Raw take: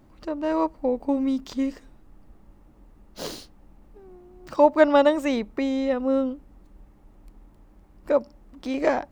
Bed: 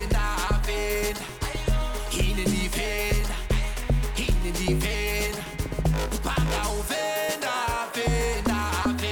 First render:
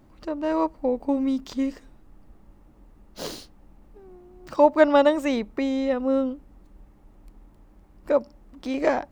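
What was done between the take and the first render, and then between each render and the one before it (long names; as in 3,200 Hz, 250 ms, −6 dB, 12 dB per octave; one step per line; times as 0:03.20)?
no processing that can be heard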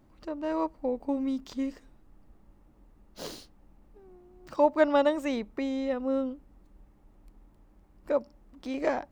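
level −6 dB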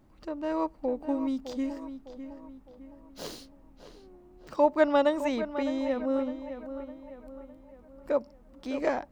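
tape delay 608 ms, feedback 49%, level −10 dB, low-pass 2,700 Hz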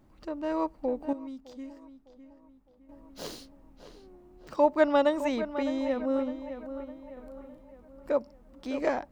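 0:01.13–0:02.89: clip gain −10.5 dB
0:07.13–0:07.62: double-tracking delay 36 ms −4 dB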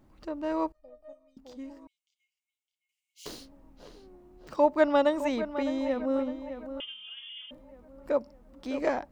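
0:00.72–0:01.37: tuned comb filter 610 Hz, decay 0.18 s, mix 100%
0:01.87–0:03.26: Chebyshev high-pass with heavy ripple 2,100 Hz, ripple 9 dB
0:06.80–0:07.51: voice inversion scrambler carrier 3,400 Hz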